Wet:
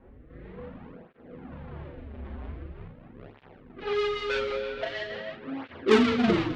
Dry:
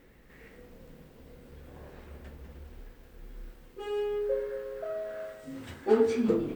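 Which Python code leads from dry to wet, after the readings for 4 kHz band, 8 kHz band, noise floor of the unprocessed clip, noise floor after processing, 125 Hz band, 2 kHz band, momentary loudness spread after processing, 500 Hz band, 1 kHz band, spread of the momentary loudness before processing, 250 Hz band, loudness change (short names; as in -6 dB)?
+15.5 dB, n/a, -56 dBFS, -53 dBFS, +7.5 dB, +13.5 dB, 22 LU, +1.0 dB, +8.0 dB, 24 LU, +5.5 dB, +3.0 dB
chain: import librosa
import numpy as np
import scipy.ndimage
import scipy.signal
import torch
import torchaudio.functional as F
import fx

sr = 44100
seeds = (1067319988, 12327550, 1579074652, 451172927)

p1 = fx.halfwave_hold(x, sr)
p2 = scipy.signal.sosfilt(scipy.signal.butter(4, 3900.0, 'lowpass', fs=sr, output='sos'), p1)
p3 = fx.dynamic_eq(p2, sr, hz=490.0, q=1.4, threshold_db=-33.0, ratio=4.0, max_db=-3)
p4 = fx.rider(p3, sr, range_db=4, speed_s=2.0)
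p5 = p3 + F.gain(torch.from_numpy(p4), -2.0).numpy()
p6 = 10.0 ** (-8.5 / 20.0) * np.tanh(p5 / 10.0 ** (-8.5 / 20.0))
p7 = fx.rotary_switch(p6, sr, hz=1.1, then_hz=6.3, switch_at_s=2.31)
p8 = fx.env_lowpass(p7, sr, base_hz=1200.0, full_db=-22.0)
p9 = fx.room_early_taps(p8, sr, ms=(37, 49), db=(-4.0, -7.5))
y = fx.flanger_cancel(p9, sr, hz=0.44, depth_ms=6.9)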